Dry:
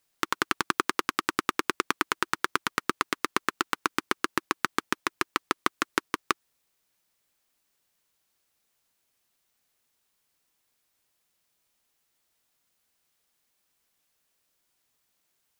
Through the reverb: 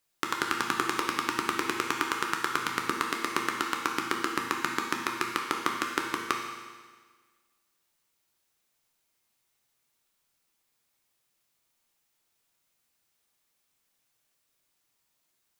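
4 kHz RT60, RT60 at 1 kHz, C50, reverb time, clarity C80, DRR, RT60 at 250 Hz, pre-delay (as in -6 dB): 1.5 s, 1.5 s, 3.5 dB, 1.5 s, 5.5 dB, 0.5 dB, 1.5 s, 8 ms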